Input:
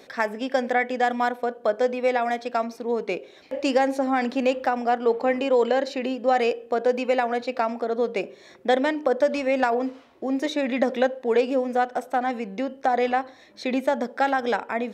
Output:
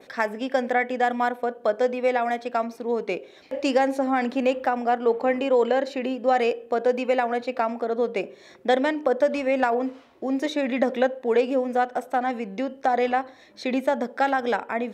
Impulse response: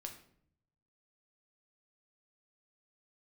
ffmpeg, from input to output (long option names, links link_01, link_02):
-af "adynamicequalizer=threshold=0.00316:dfrequency=5100:dqfactor=1.3:tfrequency=5100:tqfactor=1.3:attack=5:release=100:ratio=0.375:range=3:mode=cutabove:tftype=bell"